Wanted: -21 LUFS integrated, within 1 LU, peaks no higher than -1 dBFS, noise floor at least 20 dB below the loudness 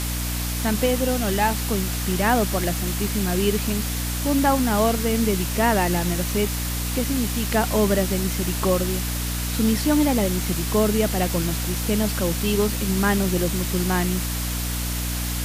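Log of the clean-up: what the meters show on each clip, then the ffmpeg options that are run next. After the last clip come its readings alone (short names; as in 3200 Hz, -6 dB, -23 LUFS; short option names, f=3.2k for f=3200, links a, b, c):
hum 60 Hz; harmonics up to 300 Hz; hum level -25 dBFS; noise floor -26 dBFS; noise floor target -43 dBFS; loudness -22.5 LUFS; peak -7.0 dBFS; loudness target -21.0 LUFS
-> -af "bandreject=f=60:t=h:w=4,bandreject=f=120:t=h:w=4,bandreject=f=180:t=h:w=4,bandreject=f=240:t=h:w=4,bandreject=f=300:t=h:w=4"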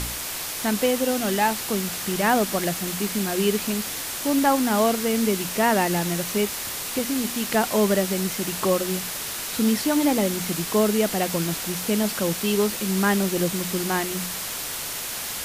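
hum none; noise floor -31 dBFS; noise floor target -44 dBFS
-> -af "afftdn=nr=13:nf=-31"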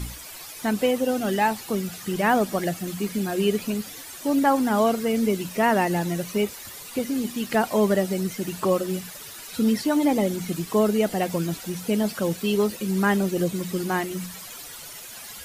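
noise floor -40 dBFS; noise floor target -45 dBFS
-> -af "afftdn=nr=6:nf=-40"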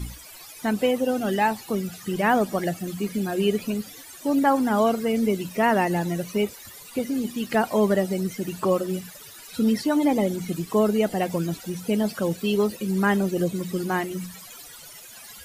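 noise floor -44 dBFS; noise floor target -45 dBFS
-> -af "afftdn=nr=6:nf=-44"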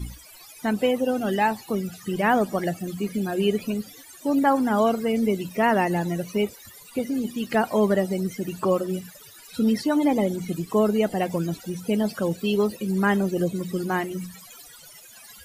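noise floor -47 dBFS; loudness -24.5 LUFS; peak -8.5 dBFS; loudness target -21.0 LUFS
-> -af "volume=3.5dB"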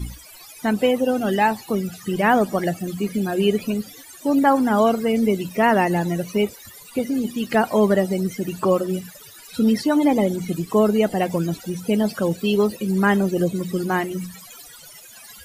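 loudness -21.0 LUFS; peak -5.0 dBFS; noise floor -44 dBFS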